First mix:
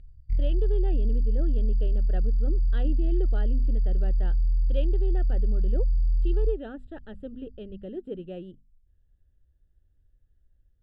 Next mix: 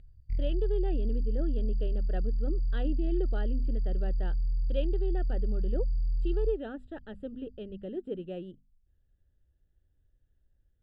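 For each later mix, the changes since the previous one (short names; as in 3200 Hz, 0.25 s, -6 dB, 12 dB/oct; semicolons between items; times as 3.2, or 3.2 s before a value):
master: add low shelf 91 Hz -7 dB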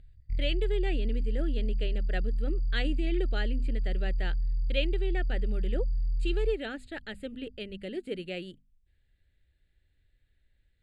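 speech: remove running mean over 20 samples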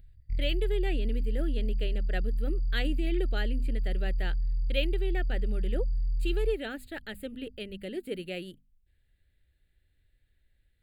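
master: remove LPF 8300 Hz 24 dB/oct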